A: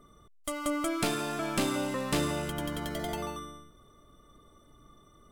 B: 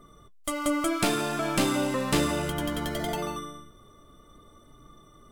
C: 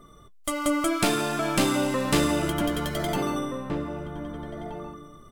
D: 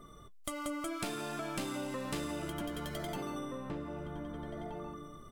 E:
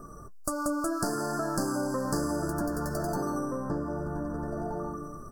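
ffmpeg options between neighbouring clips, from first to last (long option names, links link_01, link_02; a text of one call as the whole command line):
ffmpeg -i in.wav -af "flanger=delay=5.8:depth=5.9:regen=-57:speed=0.6:shape=triangular,volume=8.5dB" out.wav
ffmpeg -i in.wav -filter_complex "[0:a]asplit=2[link_01][link_02];[link_02]adelay=1574,volume=-6dB,highshelf=frequency=4000:gain=-35.4[link_03];[link_01][link_03]amix=inputs=2:normalize=0,volume=2dB" out.wav
ffmpeg -i in.wav -af "acompressor=threshold=-37dB:ratio=3,volume=-2.5dB" out.wav
ffmpeg -i in.wav -af "asuperstop=centerf=2800:order=20:qfactor=1,volume=8.5dB" out.wav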